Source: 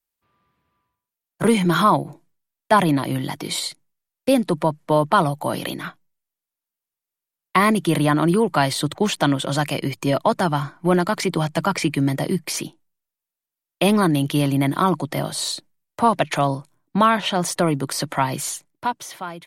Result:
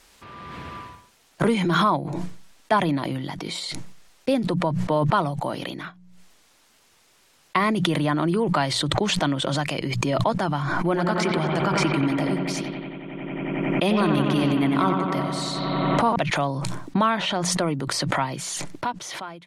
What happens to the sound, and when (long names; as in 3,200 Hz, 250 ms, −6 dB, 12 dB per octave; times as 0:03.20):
0:10.80–0:16.16: bucket-brigade delay 91 ms, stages 2,048, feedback 82%, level −5.5 dB
whole clip: low-pass filter 6,700 Hz 12 dB per octave; mains-hum notches 60/120/180 Hz; background raised ahead of every attack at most 20 dB per second; level −5 dB